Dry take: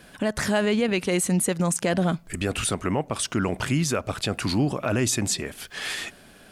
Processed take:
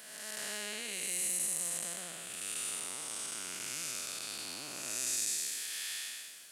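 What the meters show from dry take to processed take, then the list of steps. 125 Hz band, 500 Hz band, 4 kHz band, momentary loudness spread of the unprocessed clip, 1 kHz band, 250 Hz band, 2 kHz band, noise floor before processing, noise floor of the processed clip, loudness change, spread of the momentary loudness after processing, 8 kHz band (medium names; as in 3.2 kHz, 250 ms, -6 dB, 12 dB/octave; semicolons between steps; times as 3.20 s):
-32.5 dB, -24.5 dB, -8.0 dB, 7 LU, -19.0 dB, -29.5 dB, -12.5 dB, -50 dBFS, -49 dBFS, -10.5 dB, 8 LU, -4.0 dB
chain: spectral blur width 466 ms; differentiator; in parallel at -6 dB: hard clipper -31 dBFS, distortion -17 dB; on the sum: modulated delay 528 ms, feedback 72%, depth 142 cents, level -22 dB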